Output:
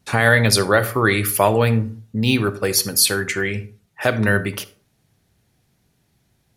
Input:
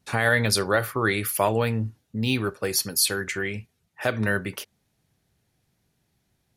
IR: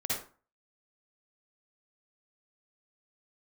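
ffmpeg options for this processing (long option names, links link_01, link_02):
-filter_complex "[0:a]asplit=2[link_01][link_02];[1:a]atrim=start_sample=2205,lowshelf=frequency=480:gain=7.5[link_03];[link_02][link_03]afir=irnorm=-1:irlink=0,volume=-21dB[link_04];[link_01][link_04]amix=inputs=2:normalize=0,volume=5.5dB"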